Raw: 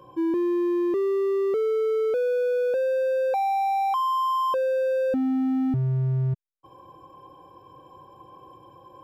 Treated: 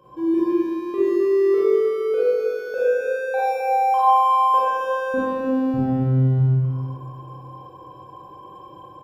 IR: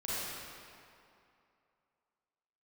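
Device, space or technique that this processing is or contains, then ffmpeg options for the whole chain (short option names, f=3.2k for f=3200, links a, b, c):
cave: -filter_complex "[0:a]aecho=1:1:262:0.316[a];[1:a]atrim=start_sample=2205[b];[a][b]afir=irnorm=-1:irlink=0"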